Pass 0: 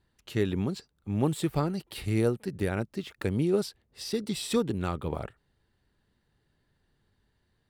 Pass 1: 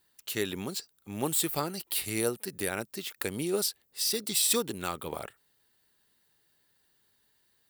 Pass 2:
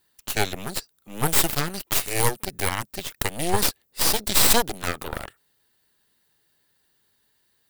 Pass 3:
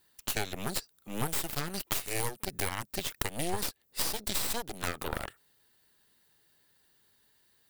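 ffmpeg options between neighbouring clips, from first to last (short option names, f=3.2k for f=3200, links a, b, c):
-af "aemphasis=mode=production:type=riaa"
-af "aeval=exprs='0.355*(cos(1*acos(clip(val(0)/0.355,-1,1)))-cos(1*PI/2))+0.158*(cos(8*acos(clip(val(0)/0.355,-1,1)))-cos(8*PI/2))':c=same,volume=2.5dB"
-af "acompressor=threshold=-27dB:ratio=10"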